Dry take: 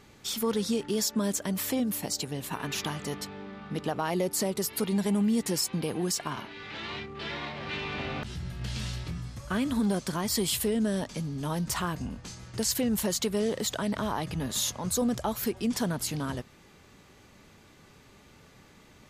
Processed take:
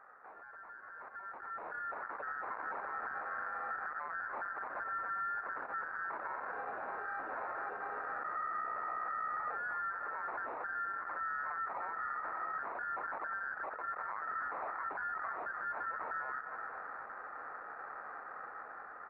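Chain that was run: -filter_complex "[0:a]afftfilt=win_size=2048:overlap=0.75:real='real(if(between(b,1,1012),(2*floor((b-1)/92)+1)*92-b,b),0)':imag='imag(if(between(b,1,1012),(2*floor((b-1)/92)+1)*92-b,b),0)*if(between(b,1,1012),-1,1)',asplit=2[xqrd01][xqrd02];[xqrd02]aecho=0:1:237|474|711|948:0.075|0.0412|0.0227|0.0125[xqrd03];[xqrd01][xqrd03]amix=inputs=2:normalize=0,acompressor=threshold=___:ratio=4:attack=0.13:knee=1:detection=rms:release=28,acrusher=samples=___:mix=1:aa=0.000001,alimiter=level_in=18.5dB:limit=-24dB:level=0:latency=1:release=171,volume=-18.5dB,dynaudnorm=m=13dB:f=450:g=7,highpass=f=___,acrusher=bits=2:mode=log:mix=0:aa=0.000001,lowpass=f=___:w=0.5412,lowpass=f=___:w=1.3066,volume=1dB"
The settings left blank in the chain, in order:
-39dB, 14, 710, 1.4k, 1.4k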